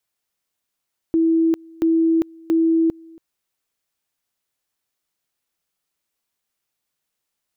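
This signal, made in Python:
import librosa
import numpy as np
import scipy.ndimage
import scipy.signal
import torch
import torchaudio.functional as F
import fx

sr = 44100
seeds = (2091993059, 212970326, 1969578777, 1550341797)

y = fx.two_level_tone(sr, hz=327.0, level_db=-13.5, drop_db=26.5, high_s=0.4, low_s=0.28, rounds=3)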